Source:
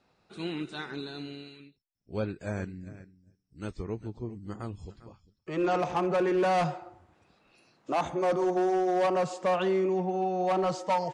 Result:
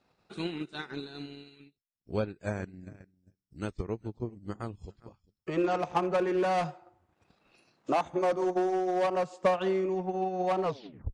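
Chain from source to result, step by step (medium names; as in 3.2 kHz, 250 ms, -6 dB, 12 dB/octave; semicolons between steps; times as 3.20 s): tape stop on the ending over 0.49 s; transient shaper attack +7 dB, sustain -9 dB; trim -2.5 dB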